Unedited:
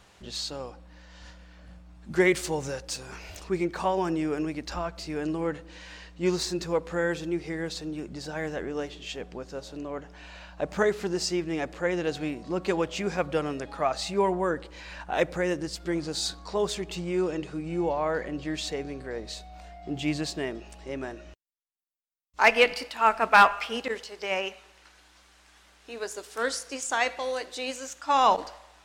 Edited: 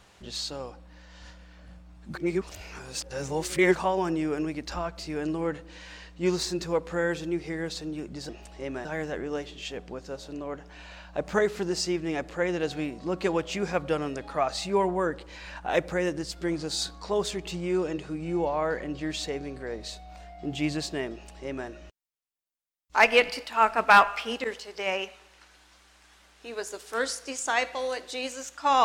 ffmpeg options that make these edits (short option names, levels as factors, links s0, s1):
-filter_complex "[0:a]asplit=5[s0][s1][s2][s3][s4];[s0]atrim=end=2.152[s5];[s1]atrim=start=2.148:end=3.762,asetpts=PTS-STARTPTS,areverse[s6];[s2]atrim=start=3.758:end=8.292[s7];[s3]atrim=start=20.558:end=21.122[s8];[s4]atrim=start=8.288[s9];[s5][s6]acrossfade=d=0.004:c1=hsin:c2=hsin[s10];[s10][s7]acrossfade=d=0.004:c1=hsin:c2=hsin[s11];[s11][s8]acrossfade=d=0.004:c1=hsin:c2=hsin[s12];[s12][s9]acrossfade=d=0.004:c1=hsin:c2=hsin"